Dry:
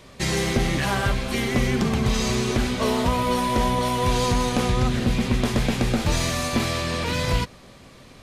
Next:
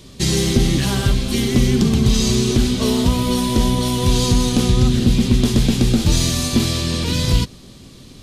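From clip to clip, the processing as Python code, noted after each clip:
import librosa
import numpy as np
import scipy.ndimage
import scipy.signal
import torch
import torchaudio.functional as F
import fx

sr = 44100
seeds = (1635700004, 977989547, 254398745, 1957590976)

y = fx.band_shelf(x, sr, hz=1100.0, db=-11.0, octaves=2.6)
y = y * librosa.db_to_amplitude(7.5)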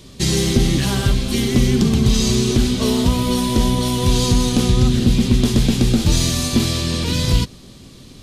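y = x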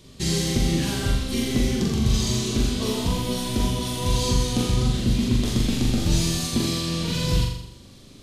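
y = fx.room_flutter(x, sr, wall_m=7.2, rt60_s=0.73)
y = y * librosa.db_to_amplitude(-8.0)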